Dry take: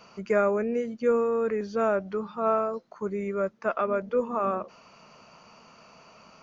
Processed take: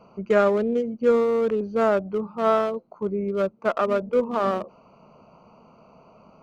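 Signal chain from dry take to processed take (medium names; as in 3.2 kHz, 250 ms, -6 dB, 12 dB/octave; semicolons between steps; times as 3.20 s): local Wiener filter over 25 samples; trim +5 dB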